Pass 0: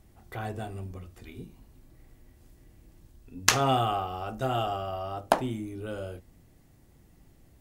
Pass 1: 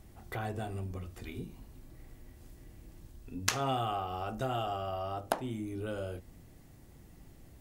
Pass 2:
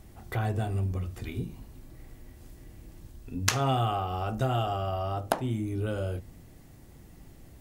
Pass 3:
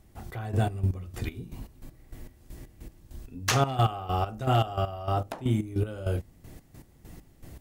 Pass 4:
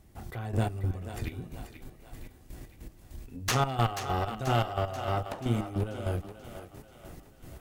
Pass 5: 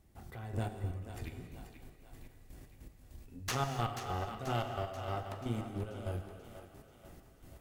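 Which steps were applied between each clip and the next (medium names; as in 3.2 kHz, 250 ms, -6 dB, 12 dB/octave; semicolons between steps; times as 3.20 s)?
compression 2:1, threshold -40 dBFS, peak gain reduction 13.5 dB; trim +3 dB
dynamic bell 110 Hz, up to +7 dB, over -53 dBFS, Q 1.1; trim +4 dB
hard clipper -19.5 dBFS, distortion -17 dB; trance gate "..xx...xx..x." 198 bpm -12 dB; trim +5.5 dB
single-diode clipper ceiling -30 dBFS; on a send: thinning echo 485 ms, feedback 54%, high-pass 320 Hz, level -9.5 dB
gated-style reverb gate 300 ms flat, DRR 7.5 dB; trim -8 dB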